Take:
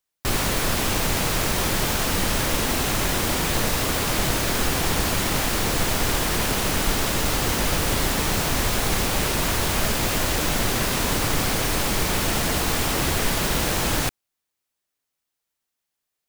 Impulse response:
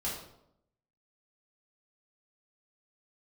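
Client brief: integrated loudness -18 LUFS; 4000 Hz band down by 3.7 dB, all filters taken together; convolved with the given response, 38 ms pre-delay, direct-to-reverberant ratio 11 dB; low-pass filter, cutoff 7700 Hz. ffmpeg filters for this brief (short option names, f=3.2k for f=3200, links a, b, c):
-filter_complex "[0:a]lowpass=7.7k,equalizer=f=4k:t=o:g=-4.5,asplit=2[a][b];[1:a]atrim=start_sample=2205,adelay=38[c];[b][c]afir=irnorm=-1:irlink=0,volume=-14.5dB[d];[a][d]amix=inputs=2:normalize=0,volume=6dB"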